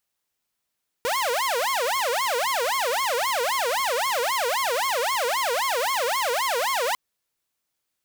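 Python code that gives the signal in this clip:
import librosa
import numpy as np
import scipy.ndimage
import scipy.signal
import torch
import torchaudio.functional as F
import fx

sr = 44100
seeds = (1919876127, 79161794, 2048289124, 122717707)

y = fx.siren(sr, length_s=5.9, kind='wail', low_hz=466.0, high_hz=1090.0, per_s=3.8, wave='saw', level_db=-19.5)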